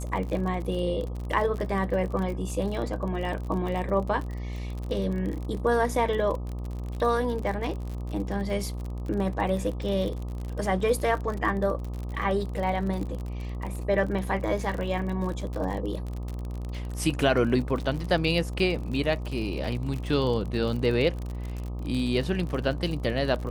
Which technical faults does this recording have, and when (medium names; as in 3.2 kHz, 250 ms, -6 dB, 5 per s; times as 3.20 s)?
buzz 60 Hz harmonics 21 -33 dBFS
crackle 47 per s -32 dBFS